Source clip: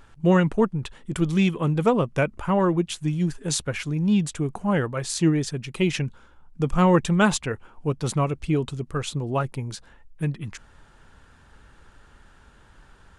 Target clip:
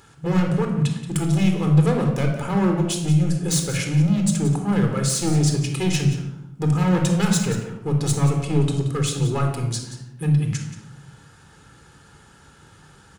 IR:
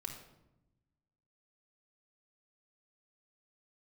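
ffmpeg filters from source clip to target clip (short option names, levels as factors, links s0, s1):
-filter_complex "[0:a]highpass=130,bass=f=250:g=5,treble=f=4000:g=10,asplit=2[s0][s1];[s1]acompressor=threshold=0.0562:ratio=6,volume=1[s2];[s0][s2]amix=inputs=2:normalize=0,asoftclip=type=hard:threshold=0.168,aecho=1:1:178:0.224[s3];[1:a]atrim=start_sample=2205,asetrate=48510,aresample=44100[s4];[s3][s4]afir=irnorm=-1:irlink=0"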